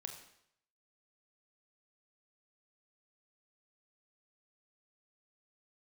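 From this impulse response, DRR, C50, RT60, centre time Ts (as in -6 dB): 4.0 dB, 7.0 dB, 0.70 s, 23 ms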